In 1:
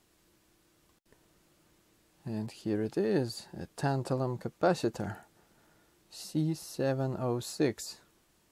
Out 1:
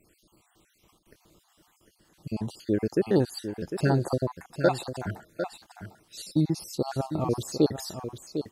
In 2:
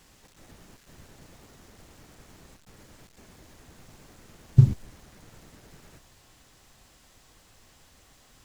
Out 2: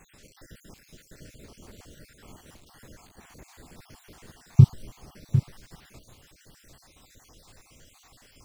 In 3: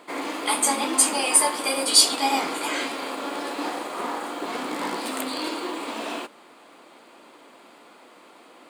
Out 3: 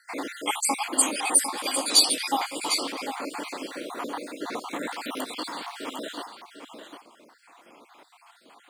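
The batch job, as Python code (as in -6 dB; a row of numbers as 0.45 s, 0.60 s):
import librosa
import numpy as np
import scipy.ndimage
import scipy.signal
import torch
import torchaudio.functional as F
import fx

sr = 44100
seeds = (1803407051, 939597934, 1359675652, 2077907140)

y = fx.spec_dropout(x, sr, seeds[0], share_pct=55)
y = y + 10.0 ** (-9.0 / 20.0) * np.pad(y, (int(752 * sr / 1000.0), 0))[:len(y)]
y = y * 10.0 ** (-30 / 20.0) / np.sqrt(np.mean(np.square(y)))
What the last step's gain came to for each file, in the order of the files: +7.0 dB, +5.0 dB, -0.5 dB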